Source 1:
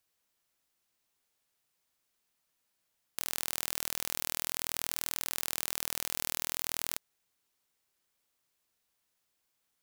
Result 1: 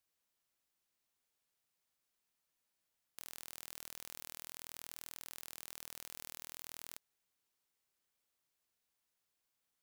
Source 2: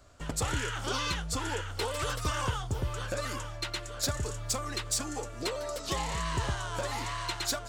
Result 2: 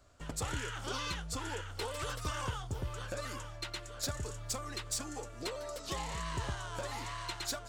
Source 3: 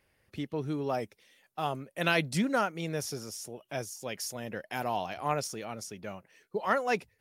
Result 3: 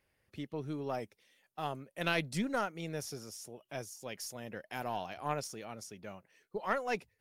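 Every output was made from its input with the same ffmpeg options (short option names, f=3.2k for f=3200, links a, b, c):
-af "aeval=exprs='(tanh(3.16*val(0)+0.65)-tanh(0.65))/3.16':c=same,volume=-2.5dB"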